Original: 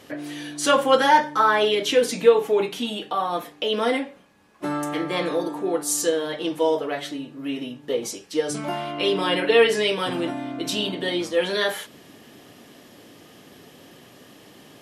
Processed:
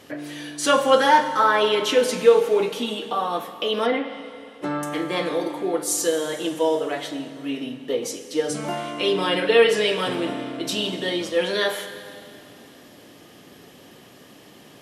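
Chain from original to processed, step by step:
four-comb reverb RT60 2.5 s, combs from 32 ms, DRR 9.5 dB
0:03.85–0:04.83: treble cut that deepens with the level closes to 3,000 Hz, closed at −20 dBFS

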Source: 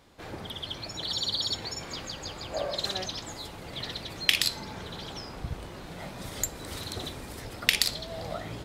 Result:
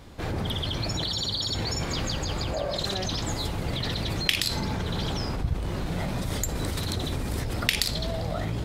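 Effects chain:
low-shelf EQ 210 Hz +11 dB
in parallel at +1.5 dB: compressor whose output falls as the input rises −35 dBFS, ratio −0.5
on the sum: level −1.5 dB

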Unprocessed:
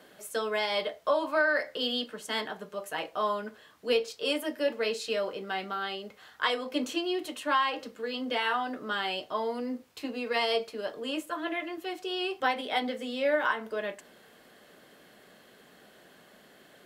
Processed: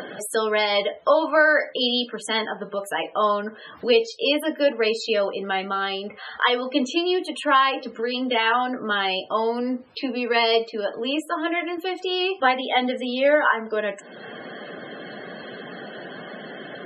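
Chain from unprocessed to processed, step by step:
spectral peaks only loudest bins 64
upward compression, threshold −33 dBFS
level +8.5 dB

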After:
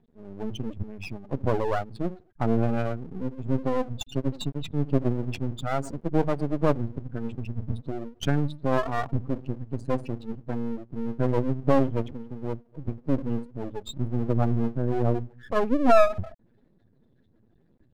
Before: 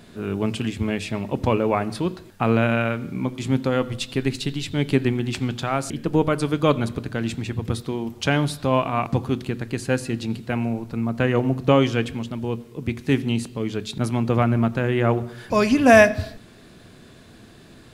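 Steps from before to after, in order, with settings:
expanding power law on the bin magnitudes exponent 2.9
noise reduction from a noise print of the clip's start 12 dB
half-wave rectification

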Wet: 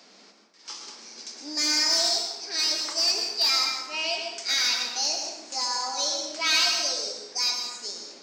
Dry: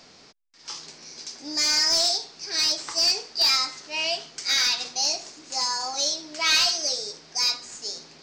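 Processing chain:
Butterworth high-pass 180 Hz 72 dB per octave
on a send: convolution reverb RT60 1.0 s, pre-delay 98 ms, DRR 3 dB
on the sum: level −2.5 dB

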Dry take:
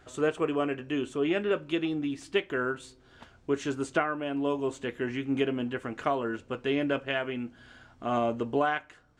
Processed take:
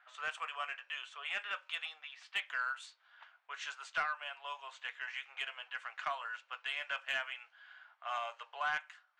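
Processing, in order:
Bessel high-pass filter 1,300 Hz, order 8
low-pass that shuts in the quiet parts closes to 1,900 Hz, open at −34.5 dBFS
mid-hump overdrive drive 12 dB, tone 4,700 Hz, clips at −16.5 dBFS
level −6 dB

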